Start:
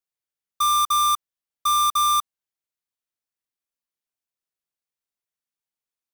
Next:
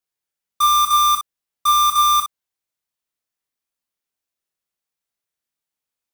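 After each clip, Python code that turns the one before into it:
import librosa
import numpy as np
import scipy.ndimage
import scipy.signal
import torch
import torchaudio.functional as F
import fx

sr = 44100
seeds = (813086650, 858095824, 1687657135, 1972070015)

y = fx.room_early_taps(x, sr, ms=(26, 60), db=(-4.5, -7.0))
y = y * librosa.db_to_amplitude(3.0)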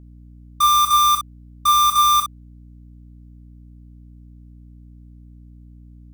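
y = fx.add_hum(x, sr, base_hz=60, snr_db=21)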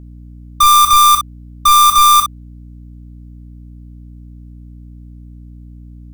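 y = np.minimum(x, 2.0 * 10.0 ** (-15.5 / 20.0) - x)
y = y * librosa.db_to_amplitude(8.0)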